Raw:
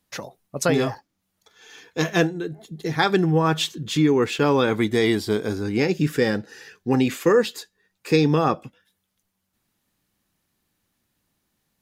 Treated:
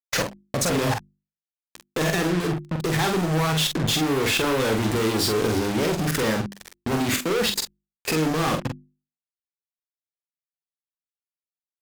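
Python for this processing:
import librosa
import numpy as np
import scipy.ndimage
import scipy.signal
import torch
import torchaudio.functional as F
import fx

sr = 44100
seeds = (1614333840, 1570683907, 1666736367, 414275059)

y = fx.fuzz(x, sr, gain_db=44.0, gate_db=-36.0)
y = fx.low_shelf(y, sr, hz=310.0, db=2.5)
y = fx.level_steps(y, sr, step_db=20)
y = fx.hum_notches(y, sr, base_hz=50, count=7)
y = fx.doubler(y, sr, ms=45.0, db=-5)
y = y * librosa.db_to_amplitude(-3.0)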